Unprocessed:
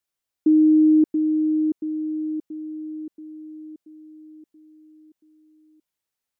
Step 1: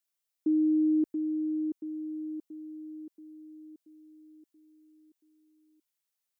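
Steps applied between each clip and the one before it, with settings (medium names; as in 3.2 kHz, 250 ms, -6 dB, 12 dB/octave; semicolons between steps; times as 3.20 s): tilt EQ +2 dB/octave; trim -6.5 dB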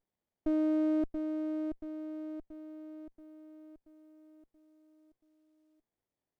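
sliding maximum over 33 samples; trim -2.5 dB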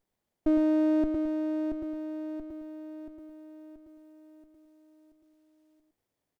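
echo from a far wall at 19 m, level -7 dB; trim +6 dB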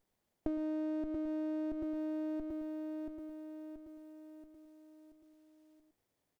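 compression 12:1, threshold -35 dBFS, peak gain reduction 14.5 dB; trim +1 dB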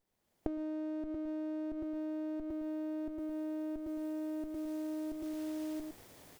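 recorder AGC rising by 26 dB/s; trim -3.5 dB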